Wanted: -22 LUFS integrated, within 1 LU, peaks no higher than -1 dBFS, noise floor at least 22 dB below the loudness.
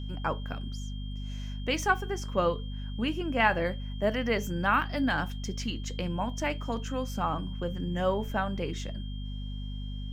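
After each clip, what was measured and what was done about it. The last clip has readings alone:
hum 50 Hz; highest harmonic 250 Hz; hum level -34 dBFS; steady tone 3.2 kHz; tone level -49 dBFS; loudness -31.5 LUFS; peak level -8.5 dBFS; loudness target -22.0 LUFS
-> hum notches 50/100/150/200/250 Hz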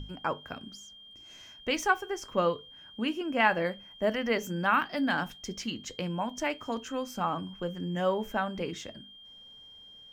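hum not found; steady tone 3.2 kHz; tone level -49 dBFS
-> band-stop 3.2 kHz, Q 30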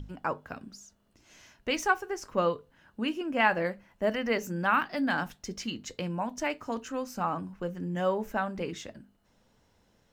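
steady tone not found; loudness -31.0 LUFS; peak level -9.0 dBFS; loudness target -22.0 LUFS
-> trim +9 dB; peak limiter -1 dBFS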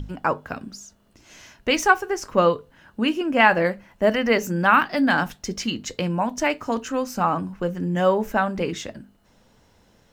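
loudness -22.0 LUFS; peak level -1.0 dBFS; noise floor -59 dBFS

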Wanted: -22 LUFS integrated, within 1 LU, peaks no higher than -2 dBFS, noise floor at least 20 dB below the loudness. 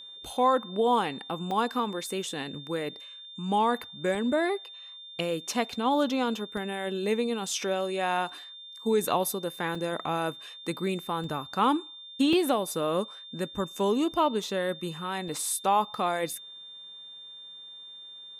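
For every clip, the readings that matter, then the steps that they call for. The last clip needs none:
dropouts 7; longest dropout 2.7 ms; steady tone 3.6 kHz; tone level -43 dBFS; loudness -29.0 LUFS; peak level -12.0 dBFS; loudness target -22.0 LUFS
-> interpolate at 1.51/4.15/6.57/9.75/11.24/12.33/15.28 s, 2.7 ms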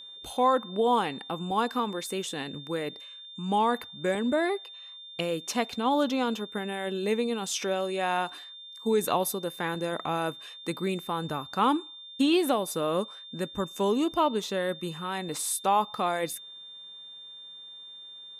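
dropouts 0; steady tone 3.6 kHz; tone level -43 dBFS
-> band-stop 3.6 kHz, Q 30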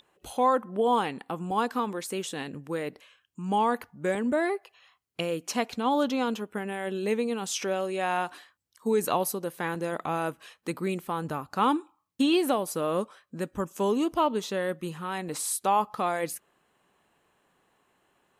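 steady tone not found; loudness -29.0 LUFS; peak level -12.0 dBFS; loudness target -22.0 LUFS
-> trim +7 dB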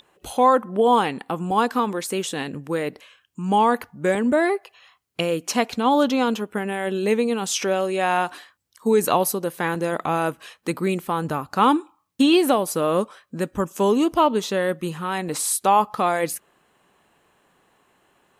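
loudness -22.0 LUFS; peak level -5.0 dBFS; noise floor -65 dBFS

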